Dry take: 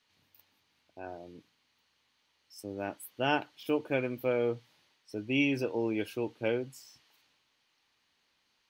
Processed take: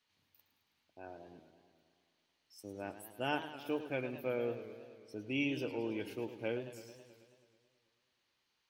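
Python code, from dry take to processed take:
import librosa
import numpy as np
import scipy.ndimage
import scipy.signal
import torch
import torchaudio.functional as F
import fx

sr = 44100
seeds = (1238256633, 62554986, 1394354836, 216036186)

y = fx.echo_warbled(x, sr, ms=108, feedback_pct=70, rate_hz=2.8, cents=158, wet_db=-12)
y = y * librosa.db_to_amplitude(-7.0)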